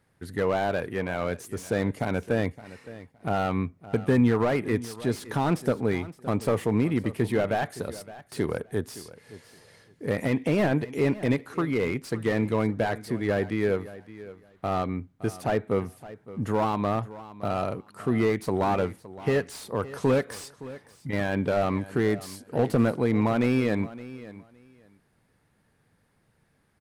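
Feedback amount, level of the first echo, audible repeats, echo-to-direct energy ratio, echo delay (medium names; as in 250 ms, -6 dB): 18%, -17.0 dB, 2, -17.0 dB, 566 ms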